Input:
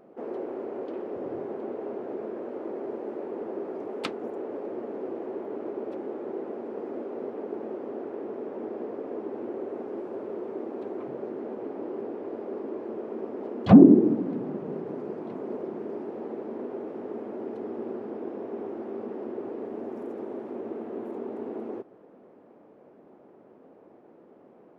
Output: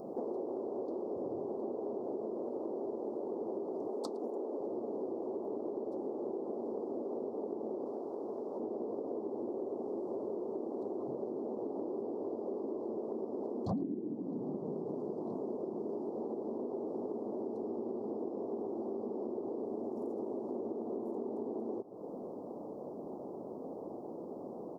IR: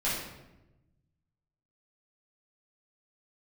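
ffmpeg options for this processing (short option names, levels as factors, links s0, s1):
-filter_complex "[0:a]asuperstop=centerf=2200:order=8:qfactor=0.62,acompressor=threshold=0.00501:ratio=8,asettb=1/sr,asplit=3[s0][s1][s2];[s0]atrim=end=3.884[s3];[s1]atrim=start=3.88:end=4.61,asetpts=PTS-STARTPTS,afade=t=in:d=0.004:c=qsin,afade=t=out:st=0.726:d=0.004:c=qsin,highpass=f=210:w=0.5412,highpass=f=210:w=1.3066[s4];[s2]atrim=start=4.606[s5];[s3][s4]acrossfade=d=0.004:c1=hsin:c2=qsin[s6];[s6][s5]acrossfade=d=0.004:c1=qsin:c2=hsin,asettb=1/sr,asplit=3[s7][s8][s9];[s7]atrim=end=7.864[s10];[s8]atrim=start=7.86:end=8.6,asetpts=PTS-STARTPTS,afade=t=in:d=0.004:c=qsin,afade=t=out:st=0.736:d=0.004:c=qsin,tiltshelf=f=680:g=-4[s11];[s9]atrim=start=8.596[s12];[s10][s11]acrossfade=d=0.004:c1=hsin:c2=qsin[s13];[s13][s12]acrossfade=d=0.004:c1=qsin:c2=hsin,asplit=2[s14][s15];[s15]adelay=110.8,volume=0.0631,highshelf=f=4000:g=-2.49[s16];[s14][s16]amix=inputs=2:normalize=0,volume=3.16"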